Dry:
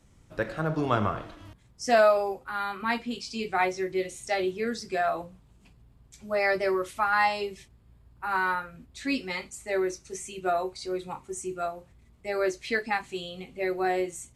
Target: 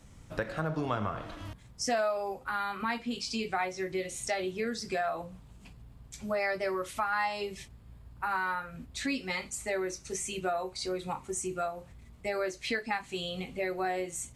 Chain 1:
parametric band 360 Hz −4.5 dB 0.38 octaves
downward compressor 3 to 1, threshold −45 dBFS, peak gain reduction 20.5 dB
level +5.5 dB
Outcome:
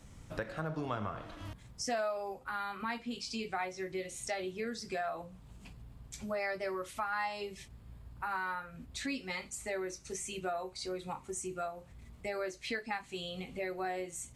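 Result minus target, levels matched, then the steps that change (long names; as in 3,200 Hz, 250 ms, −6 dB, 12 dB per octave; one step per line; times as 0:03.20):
downward compressor: peak gain reduction +5 dB
change: downward compressor 3 to 1, threshold −37.5 dBFS, peak gain reduction 15.5 dB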